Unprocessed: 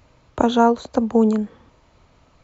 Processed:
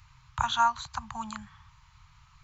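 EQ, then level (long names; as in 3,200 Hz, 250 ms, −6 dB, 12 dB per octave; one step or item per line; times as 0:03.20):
elliptic band-stop filter 140–1,000 Hz, stop band 50 dB
0.0 dB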